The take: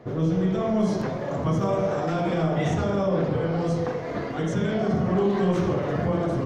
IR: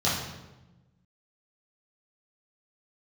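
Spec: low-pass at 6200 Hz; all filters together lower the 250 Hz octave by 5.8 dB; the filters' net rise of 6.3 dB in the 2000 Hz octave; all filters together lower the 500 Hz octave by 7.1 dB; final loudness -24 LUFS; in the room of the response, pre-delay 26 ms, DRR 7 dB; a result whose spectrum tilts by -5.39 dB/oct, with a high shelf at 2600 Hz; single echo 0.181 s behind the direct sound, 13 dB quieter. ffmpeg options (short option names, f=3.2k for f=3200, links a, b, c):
-filter_complex "[0:a]lowpass=6.2k,equalizer=f=250:t=o:g=-8,equalizer=f=500:t=o:g=-7.5,equalizer=f=2k:t=o:g=6,highshelf=f=2.6k:g=6.5,aecho=1:1:181:0.224,asplit=2[a][b];[1:a]atrim=start_sample=2205,adelay=26[c];[b][c]afir=irnorm=-1:irlink=0,volume=-20dB[d];[a][d]amix=inputs=2:normalize=0,volume=2.5dB"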